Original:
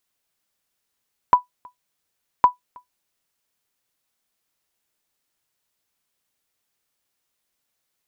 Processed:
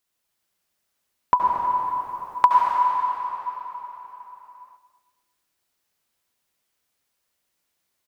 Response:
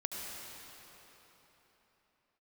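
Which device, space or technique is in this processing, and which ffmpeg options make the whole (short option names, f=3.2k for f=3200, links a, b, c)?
cathedral: -filter_complex "[0:a]asettb=1/sr,asplit=3[a][b][c];[a]atrim=end=1.364[d];[b]atrim=start=1.36:end=2.63,asetpts=PTS-STARTPTS,afade=t=in:d=0.004:c=qsin,afade=t=out:st=1.266:d=0.004:c=qsin,tiltshelf=f=700:g=-10[e];[c]atrim=start=2.626[f];[d][e]acrossfade=d=0.004:c1=hsin:c2=qsin[g];[g][f]acrossfade=d=0.004:c1=qsin:c2=hsin[h];[1:a]atrim=start_sample=2205[i];[h][i]afir=irnorm=-1:irlink=0,asplit=2[j][k];[k]adelay=229,lowpass=f=2k:p=1,volume=-13dB,asplit=2[l][m];[m]adelay=229,lowpass=f=2k:p=1,volume=0.31,asplit=2[n][o];[o]adelay=229,lowpass=f=2k:p=1,volume=0.31[p];[j][l][n][p]amix=inputs=4:normalize=0"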